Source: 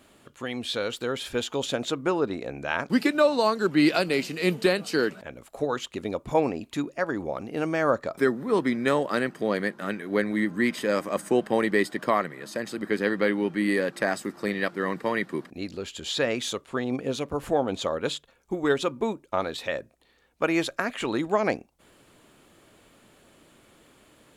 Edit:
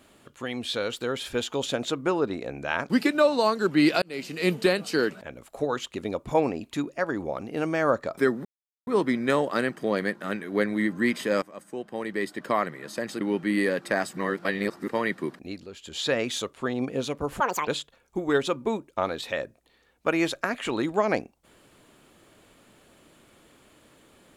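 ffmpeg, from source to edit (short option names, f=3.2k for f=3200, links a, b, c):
-filter_complex "[0:a]asplit=11[a][b][c][d][e][f][g][h][i][j][k];[a]atrim=end=4.02,asetpts=PTS-STARTPTS,afade=t=out:st=4.016:d=0.004:c=hsin[l];[b]atrim=start=4.02:end=8.45,asetpts=PTS-STARTPTS,afade=t=in:d=0.39,afade=t=out:st=4.426:d=0.004:c=hsin,apad=pad_dur=0.42[m];[c]atrim=start=8.45:end=11,asetpts=PTS-STARTPTS,afade=t=in:d=0.004:c=hsin,afade=t=out:st=2.546:d=0.004:c=hsin:silence=0.177828[n];[d]atrim=start=11:end=12.792,asetpts=PTS-STARTPTS,afade=t=in:d=1.27:c=qua:silence=0.177828[o];[e]atrim=start=13.318:end=14.242[p];[f]atrim=start=14.238:end=15.002,asetpts=PTS-STARTPTS,areverse[q];[g]atrim=start=14.998:end=15.78,asetpts=PTS-STARTPTS,afade=t=out:st=0.502:d=0.28:silence=0.398107[r];[h]atrim=start=15.78:end=15.88,asetpts=PTS-STARTPTS,volume=-8dB[s];[i]atrim=start=15.88:end=17.514,asetpts=PTS-STARTPTS,afade=t=in:d=0.28:silence=0.398107[t];[j]atrim=start=17.51:end=18.03,asetpts=PTS-STARTPTS,asetrate=83349,aresample=44100,atrim=end_sample=12133,asetpts=PTS-STARTPTS[u];[k]atrim=start=18.026[v];[l][m][n][o]concat=n=4:v=0:a=1[w];[w][p]acrossfade=d=0.004:c1=hsin:c2=hsin[x];[x][q]acrossfade=d=0.004:c1=hsin:c2=hsin[y];[r][s][t]concat=n=3:v=0:a=1[z];[y][z]acrossfade=d=0.004:c1=hsin:c2=hsin[aa];[aa][u]acrossfade=d=0.004:c1=hsin:c2=hsin[ab];[ab][v]acrossfade=d=0.004:c1=hsin:c2=hsin"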